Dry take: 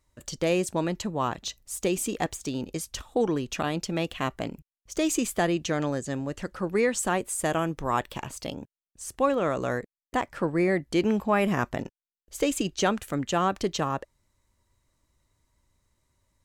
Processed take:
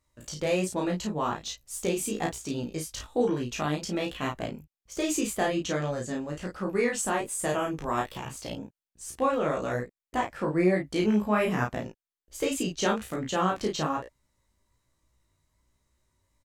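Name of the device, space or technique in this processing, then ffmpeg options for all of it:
double-tracked vocal: -filter_complex "[0:a]asplit=2[link_01][link_02];[link_02]adelay=33,volume=-3dB[link_03];[link_01][link_03]amix=inputs=2:normalize=0,flanger=delay=15:depth=4.9:speed=1.2"

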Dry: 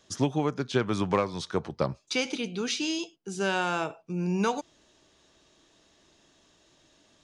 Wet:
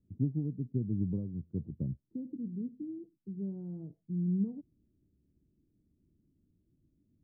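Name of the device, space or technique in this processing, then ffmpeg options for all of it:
the neighbour's flat through the wall: -af "lowpass=frequency=260:width=0.5412,lowpass=frequency=260:width=1.3066,equalizer=frequency=85:width_type=o:width=0.98:gain=4,volume=-2dB"

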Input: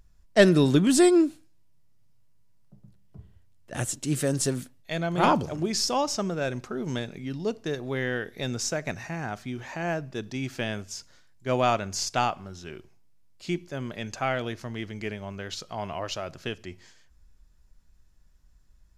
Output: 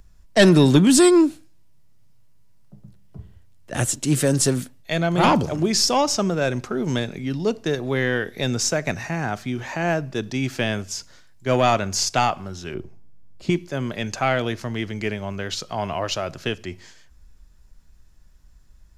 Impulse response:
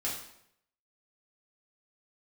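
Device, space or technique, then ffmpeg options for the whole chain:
one-band saturation: -filter_complex "[0:a]asettb=1/sr,asplit=3[link_01][link_02][link_03];[link_01]atrim=end=12.744[link_04];[link_02]atrim=start=12.74:end=13.5,asetpts=PTS-STARTPTS,afade=type=in:duration=0.004:curve=qsin,afade=type=out:start_time=0.756:duration=0.004:curve=qsin,tiltshelf=frequency=970:gain=8[link_05];[link_03]atrim=start=13.496[link_06];[link_04][link_05]acrossfade=duration=0.004:curve1=hsin:curve2=qsin[link_07];[link_07][link_06]acrossfade=duration=0.004:curve1=qsin:curve2=hsin,acrossover=split=210|2100[link_08][link_09][link_10];[link_09]asoftclip=type=tanh:threshold=-19dB[link_11];[link_08][link_11][link_10]amix=inputs=3:normalize=0,volume=7.5dB"

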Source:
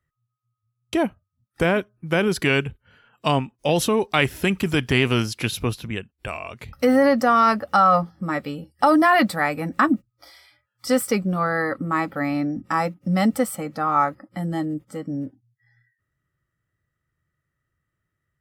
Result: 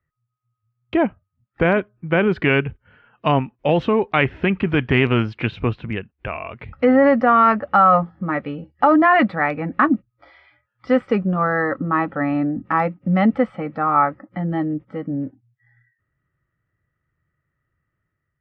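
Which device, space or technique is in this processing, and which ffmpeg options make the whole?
action camera in a waterproof case: -filter_complex "[0:a]asettb=1/sr,asplit=3[link_01][link_02][link_03];[link_01]atrim=end=11.114[link_04];[link_02]atrim=start=11.11:end=12.67,asetpts=PTS-STARTPTS,afade=type=in:duration=0.004:curve=qsin,afade=type=out:start_time=1.556:duration=0.004:curve=qsin,bandreject=frequency=2200:width=6.3[link_05];[link_03]atrim=start=12.666[link_06];[link_04][link_05]acrossfade=duration=0.004:curve1=hsin:curve2=qsin[link_07];[link_07][link_06]acrossfade=duration=0.004:curve1=qsin:curve2=hsin,lowpass=frequency=2600:width=0.5412,lowpass=frequency=2600:width=1.3066,dynaudnorm=framelen=120:gausssize=7:maxgain=3.5dB" -ar 44100 -c:a aac -b:a 128k

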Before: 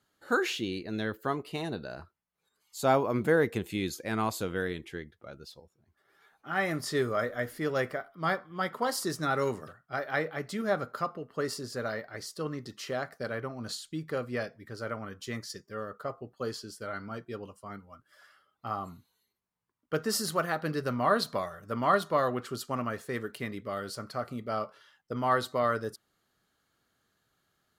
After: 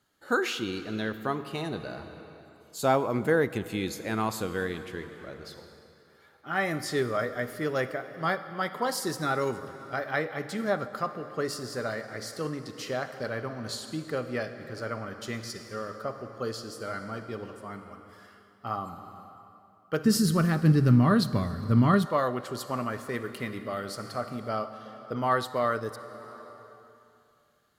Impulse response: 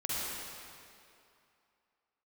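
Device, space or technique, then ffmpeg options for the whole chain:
compressed reverb return: -filter_complex "[0:a]asplit=2[link_01][link_02];[1:a]atrim=start_sample=2205[link_03];[link_02][link_03]afir=irnorm=-1:irlink=0,acompressor=threshold=-30dB:ratio=6,volume=-9dB[link_04];[link_01][link_04]amix=inputs=2:normalize=0,asplit=3[link_05][link_06][link_07];[link_05]afade=type=out:start_time=20.04:duration=0.02[link_08];[link_06]asubboost=boost=10:cutoff=200,afade=type=in:start_time=20.04:duration=0.02,afade=type=out:start_time=22.05:duration=0.02[link_09];[link_07]afade=type=in:start_time=22.05:duration=0.02[link_10];[link_08][link_09][link_10]amix=inputs=3:normalize=0"

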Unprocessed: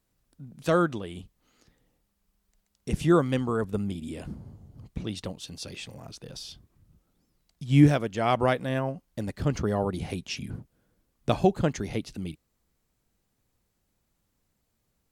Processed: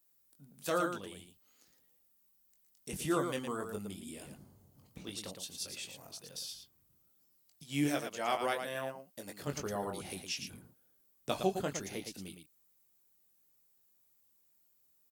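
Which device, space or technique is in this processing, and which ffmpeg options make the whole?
slapback doubling: -filter_complex "[0:a]asplit=3[link_01][link_02][link_03];[link_02]adelay=21,volume=-5.5dB[link_04];[link_03]adelay=113,volume=-6.5dB[link_05];[link_01][link_04][link_05]amix=inputs=3:normalize=0,asettb=1/sr,asplit=3[link_06][link_07][link_08];[link_06]atrim=end=7.634[link_09];[link_07]atrim=start=7.63:end=9.47,asetpts=PTS-STARTPTS,afade=type=in:duration=0.004:curve=qsin,afade=type=out:start_time=1.836:duration=0.004:curve=qsin,highpass=frequency=260:poles=1[link_10];[link_08]atrim=start=9.466[link_11];[link_09][link_10]acrossfade=duration=0.004:curve1=hsin:curve2=qsin[link_12];[link_12][link_11]acrossfade=duration=0.004:curve1=qsin:curve2=hsin,aemphasis=mode=production:type=bsi,volume=-9dB"

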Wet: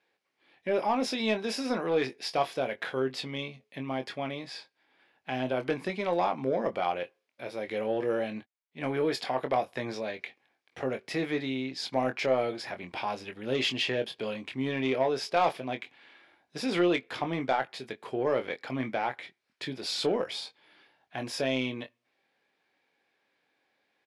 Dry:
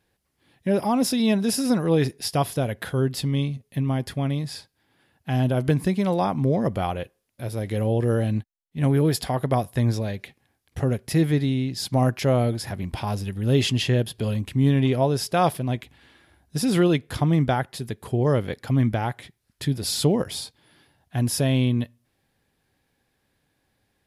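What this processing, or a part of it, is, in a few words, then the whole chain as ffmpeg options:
intercom: -filter_complex "[0:a]highpass=410,lowpass=4300,equalizer=frequency=2300:width_type=o:width=0.21:gain=6.5,asoftclip=type=tanh:threshold=-15.5dB,asplit=2[link_01][link_02];[link_02]adelay=23,volume=-8dB[link_03];[link_01][link_03]amix=inputs=2:normalize=0,volume=-1.5dB"

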